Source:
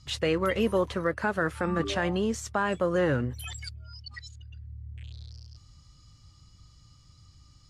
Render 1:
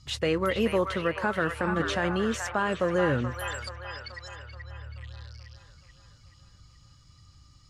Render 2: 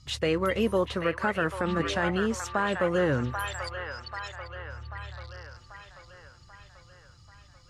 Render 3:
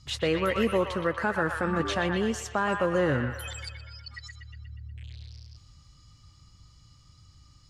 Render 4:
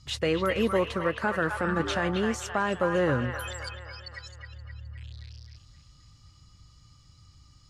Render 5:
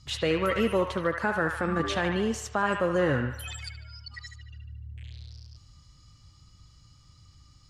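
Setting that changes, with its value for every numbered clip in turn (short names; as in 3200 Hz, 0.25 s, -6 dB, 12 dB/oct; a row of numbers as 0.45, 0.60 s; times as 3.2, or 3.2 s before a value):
band-limited delay, time: 430, 788, 121, 262, 74 ms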